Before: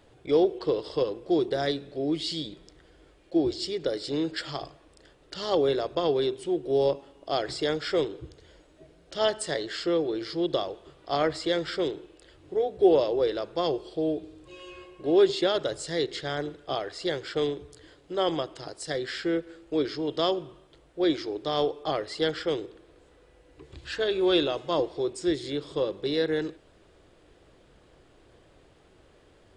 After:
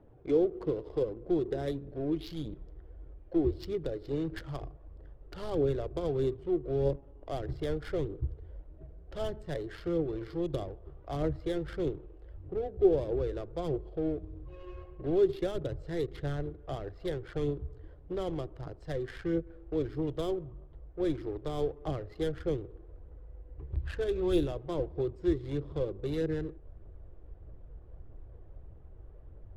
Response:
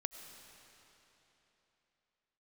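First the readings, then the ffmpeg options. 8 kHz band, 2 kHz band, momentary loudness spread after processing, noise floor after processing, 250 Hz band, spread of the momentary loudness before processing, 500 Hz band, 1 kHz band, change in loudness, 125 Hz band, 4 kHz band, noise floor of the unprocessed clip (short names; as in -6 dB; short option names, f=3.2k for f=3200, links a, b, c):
under -15 dB, -12.0 dB, 22 LU, -52 dBFS, -4.0 dB, 13 LU, -6.0 dB, -11.5 dB, -5.5 dB, +4.5 dB, -17.5 dB, -59 dBFS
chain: -filter_complex "[0:a]adynamicsmooth=sensitivity=3.5:basefreq=780,asubboost=boost=5.5:cutoff=98,acrossover=split=430[a][b];[b]acompressor=threshold=-46dB:ratio=3[c];[a][c]amix=inputs=2:normalize=0,aphaser=in_gain=1:out_gain=1:delay=2.9:decay=0.29:speed=1.6:type=triangular"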